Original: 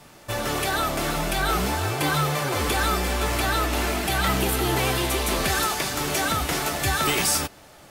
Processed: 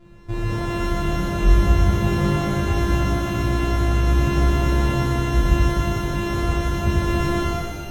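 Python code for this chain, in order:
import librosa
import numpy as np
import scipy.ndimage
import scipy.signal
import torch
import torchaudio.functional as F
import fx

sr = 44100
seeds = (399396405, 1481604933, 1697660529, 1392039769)

y = np.r_[np.sort(x[:len(x) // 128 * 128].reshape(-1, 128), axis=1).ravel(), x[len(x) // 128 * 128:]]
y = fx.riaa(y, sr, side='playback')
y = fx.rev_shimmer(y, sr, seeds[0], rt60_s=1.7, semitones=12, shimmer_db=-8, drr_db=-7.0)
y = F.gain(torch.from_numpy(y), -9.0).numpy()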